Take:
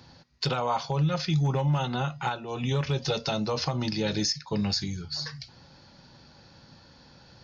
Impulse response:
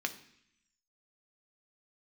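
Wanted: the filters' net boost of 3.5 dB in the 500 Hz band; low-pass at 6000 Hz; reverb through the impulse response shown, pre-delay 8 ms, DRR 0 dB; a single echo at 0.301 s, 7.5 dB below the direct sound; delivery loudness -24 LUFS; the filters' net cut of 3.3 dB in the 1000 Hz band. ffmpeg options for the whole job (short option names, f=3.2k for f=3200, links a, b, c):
-filter_complex "[0:a]lowpass=6k,equalizer=f=500:t=o:g=5.5,equalizer=f=1k:t=o:g=-6.5,aecho=1:1:301:0.422,asplit=2[a][b];[1:a]atrim=start_sample=2205,adelay=8[c];[b][c]afir=irnorm=-1:irlink=0,volume=-3.5dB[d];[a][d]amix=inputs=2:normalize=0,volume=1dB"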